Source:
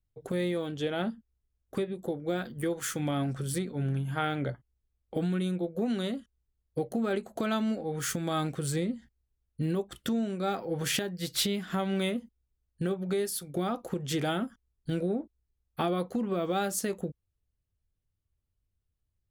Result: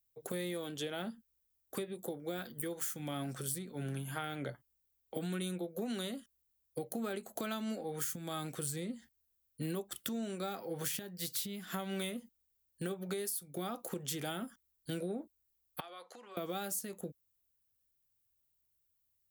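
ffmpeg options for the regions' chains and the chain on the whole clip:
ffmpeg -i in.wav -filter_complex "[0:a]asettb=1/sr,asplit=3[link_01][link_02][link_03];[link_01]atrim=end=15.804[link_04];[link_02]atrim=start=15.8:end=16.37,asetpts=PTS-STARTPTS,afade=type=in:duration=0.004:curve=qsin,afade=type=out:start_time=0.566:duration=0.004:curve=qsin,highpass=750,lowpass=6000,acompressor=threshold=-47dB:ratio=3:attack=3.2:release=140:knee=1:detection=peak[link_05];[link_03]atrim=start=16.366[link_06];[link_04][link_05]acrossfade=duration=0.004:curve1=hsin:curve2=qsin[link_07];[link_07][link_06]acrossfade=duration=0.004:curve1=qsin:curve2=hsin,aemphasis=mode=production:type=bsi,acrossover=split=210[link_08][link_09];[link_09]acompressor=threshold=-35dB:ratio=6[link_10];[link_08][link_10]amix=inputs=2:normalize=0,volume=-2dB" out.wav

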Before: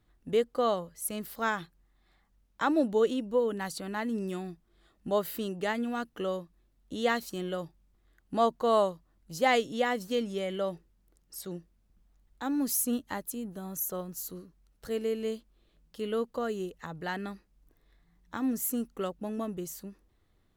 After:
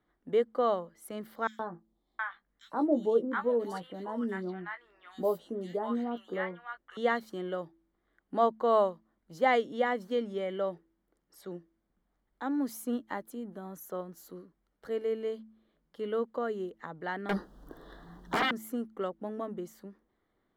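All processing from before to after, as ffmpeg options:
ffmpeg -i in.wav -filter_complex "[0:a]asettb=1/sr,asplit=3[link_01][link_02][link_03];[link_01]atrim=end=1.474[link_04];[link_02]atrim=start=1.47:end=6.97,asetpts=PTS-STARTPTS,afade=type=in:duration=0.004:curve=qsin,afade=type=out:start_time=5.496:duration=0.004:curve=qsin,asplit=2[link_05][link_06];[link_06]adelay=17,volume=-8dB[link_07];[link_05][link_07]amix=inputs=2:normalize=0,atrim=end_sample=242550,acrossover=split=1000|3400[link_08][link_09][link_10];[link_08]adelay=120[link_11];[link_09]adelay=720[link_12];[link_11][link_12][link_10]amix=inputs=3:normalize=0,atrim=end_sample=242550[link_13];[link_03]atrim=start=6.966[link_14];[link_04][link_13]acrossfade=duration=0.004:curve1=hsin:curve2=qsin[link_15];[link_15][link_14]acrossfade=duration=0.004:curve1=qsin:curve2=hsin,asettb=1/sr,asplit=3[link_16][link_17][link_18];[link_16]atrim=end=17.294[link_19];[link_17]atrim=start=17.29:end=18.51,asetpts=PTS-STARTPTS,afade=type=in:duration=0.004:curve=qsin,afade=type=out:start_time=1.216:duration=0.004:curve=qsin,asuperstop=centerf=2300:order=4:qfactor=1.6,aeval=exprs='0.0794*sin(PI/2*10*val(0)/0.0794)':channel_layout=same[link_20];[link_18]atrim=start=18.506[link_21];[link_19][link_20]acrossfade=duration=0.004:curve1=hsin:curve2=qsin[link_22];[link_22][link_21]acrossfade=duration=0.004:curve1=qsin:curve2=hsin,acrossover=split=190 3000:gain=0.178 1 0.158[link_23][link_24][link_25];[link_23][link_24][link_25]amix=inputs=3:normalize=0,bandreject=frequency=2600:width=5.3,bandreject=frequency=109.9:width_type=h:width=4,bandreject=frequency=219.8:width_type=h:width=4,bandreject=frequency=329.7:width_type=h:width=4" out.wav

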